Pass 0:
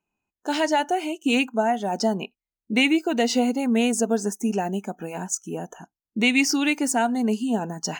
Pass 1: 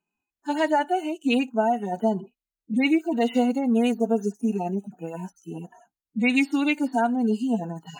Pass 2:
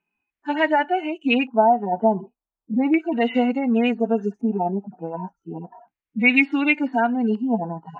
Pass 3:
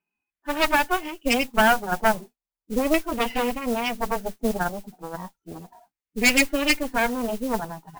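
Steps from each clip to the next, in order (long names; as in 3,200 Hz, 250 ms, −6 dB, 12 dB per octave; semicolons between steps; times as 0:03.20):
harmonic-percussive split with one part muted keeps harmonic
auto-filter low-pass square 0.34 Hz 970–2,300 Hz; level +1.5 dB
harmonic generator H 6 −7 dB, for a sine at −3.5 dBFS; noise that follows the level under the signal 16 dB; level −5.5 dB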